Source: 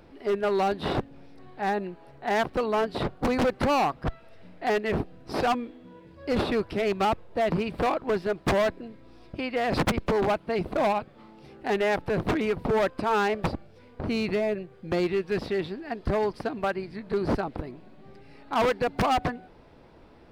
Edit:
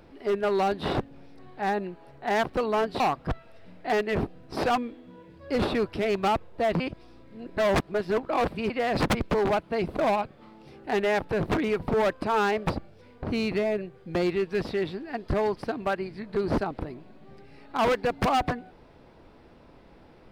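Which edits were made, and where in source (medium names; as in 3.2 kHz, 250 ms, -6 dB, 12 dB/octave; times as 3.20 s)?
3.00–3.77 s: delete
7.57–9.47 s: reverse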